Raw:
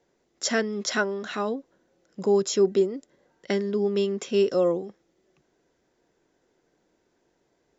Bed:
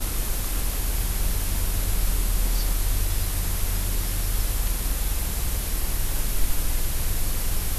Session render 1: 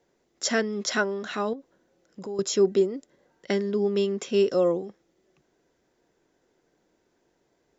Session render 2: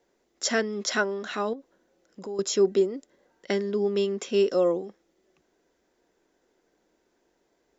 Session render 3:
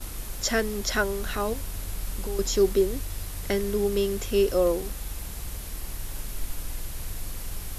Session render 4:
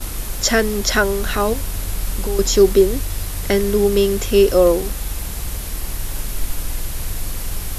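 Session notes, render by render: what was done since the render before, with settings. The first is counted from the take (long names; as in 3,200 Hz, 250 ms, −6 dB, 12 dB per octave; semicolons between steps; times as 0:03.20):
0:01.53–0:02.39: downward compressor 2.5 to 1, threshold −38 dBFS
parametric band 120 Hz −13 dB 0.71 octaves
mix in bed −9 dB
level +9.5 dB; brickwall limiter −2 dBFS, peak gain reduction 2 dB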